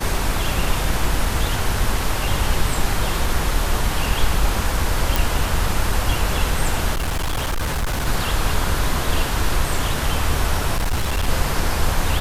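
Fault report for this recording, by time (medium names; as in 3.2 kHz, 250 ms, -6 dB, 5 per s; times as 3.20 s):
5.16 s: pop
6.94–8.08 s: clipped -18.5 dBFS
10.75–11.29 s: clipped -16.5 dBFS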